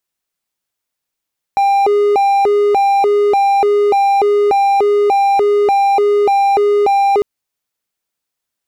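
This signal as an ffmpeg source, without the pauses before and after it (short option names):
-f lavfi -i "aevalsrc='0.447*(1-4*abs(mod((603*t+192/1.7*(0.5-abs(mod(1.7*t,1)-0.5)))+0.25,1)-0.5))':d=5.65:s=44100"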